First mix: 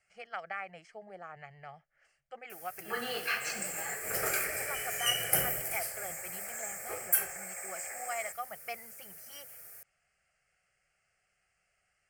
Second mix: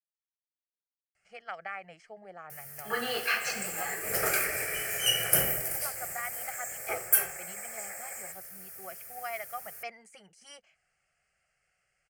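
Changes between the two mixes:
speech: entry +1.15 s
first sound +4.0 dB

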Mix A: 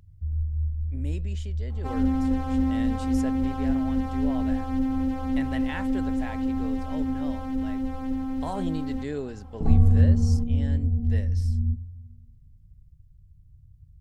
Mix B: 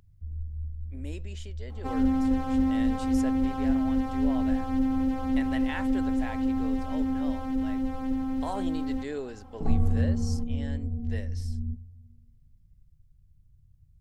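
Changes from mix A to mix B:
speech: add parametric band 150 Hz −12 dB 1.3 octaves
first sound: add parametric band 74 Hz −8.5 dB 3 octaves

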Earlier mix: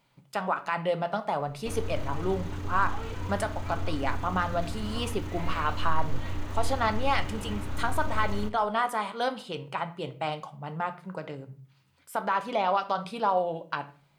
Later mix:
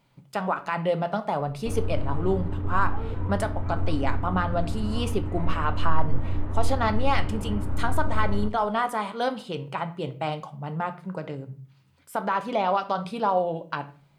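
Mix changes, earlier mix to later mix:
background: add low-pass filter 1,400 Hz 12 dB per octave
master: add low-shelf EQ 480 Hz +6.5 dB

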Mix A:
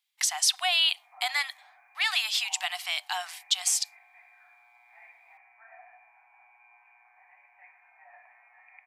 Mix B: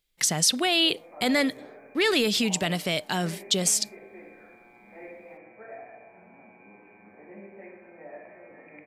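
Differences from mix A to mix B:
background: send +6.0 dB
master: remove Chebyshev high-pass with heavy ripple 720 Hz, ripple 3 dB

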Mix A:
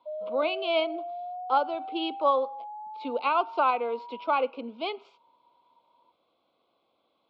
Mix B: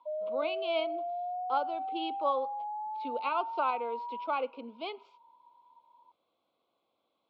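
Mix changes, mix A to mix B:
speech −6.5 dB
background: remove resonant band-pass 590 Hz, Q 1.3

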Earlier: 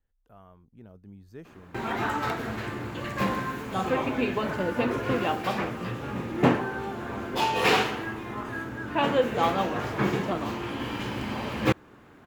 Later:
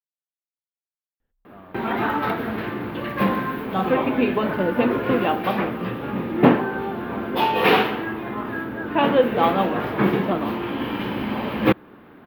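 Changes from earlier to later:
speech: entry +1.20 s
master: add drawn EQ curve 120 Hz 0 dB, 190 Hz +8 dB, 3,500 Hz +3 dB, 8,100 Hz −22 dB, 12,000 Hz +7 dB

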